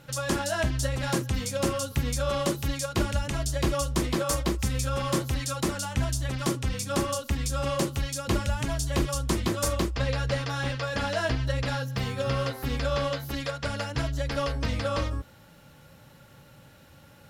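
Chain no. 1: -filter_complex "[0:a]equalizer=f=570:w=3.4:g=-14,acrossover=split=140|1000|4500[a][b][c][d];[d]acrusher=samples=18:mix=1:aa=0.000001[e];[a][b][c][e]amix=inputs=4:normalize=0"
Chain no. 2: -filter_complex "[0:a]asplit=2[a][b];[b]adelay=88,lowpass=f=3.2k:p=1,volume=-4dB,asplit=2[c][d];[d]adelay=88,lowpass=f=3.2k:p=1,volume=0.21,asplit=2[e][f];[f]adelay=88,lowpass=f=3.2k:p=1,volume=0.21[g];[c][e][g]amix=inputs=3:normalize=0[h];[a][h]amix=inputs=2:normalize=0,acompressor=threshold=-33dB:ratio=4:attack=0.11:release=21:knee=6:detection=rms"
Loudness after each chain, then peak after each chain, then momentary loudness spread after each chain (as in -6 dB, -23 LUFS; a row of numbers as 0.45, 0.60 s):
-30.5, -37.0 LUFS; -14.0, -27.5 dBFS; 3, 6 LU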